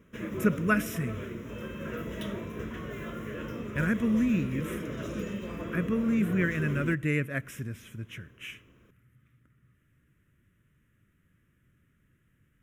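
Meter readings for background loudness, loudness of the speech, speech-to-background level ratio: −37.5 LKFS, −30.5 LKFS, 7.0 dB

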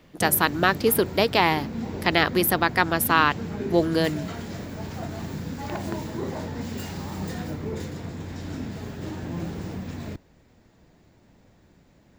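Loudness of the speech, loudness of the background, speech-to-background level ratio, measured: −22.0 LKFS, −33.5 LKFS, 11.5 dB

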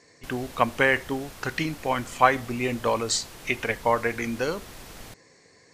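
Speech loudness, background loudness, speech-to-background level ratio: −26.0 LKFS, −43.5 LKFS, 17.5 dB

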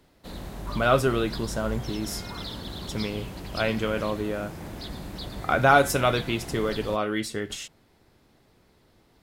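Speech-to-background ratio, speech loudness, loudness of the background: 11.5 dB, −26.0 LKFS, −37.5 LKFS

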